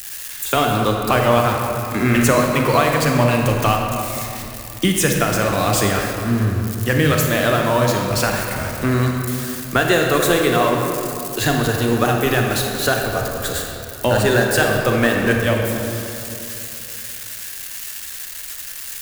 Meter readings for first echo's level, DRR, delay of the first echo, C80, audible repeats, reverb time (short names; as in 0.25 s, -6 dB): none, 1.0 dB, none, 3.0 dB, none, 2.9 s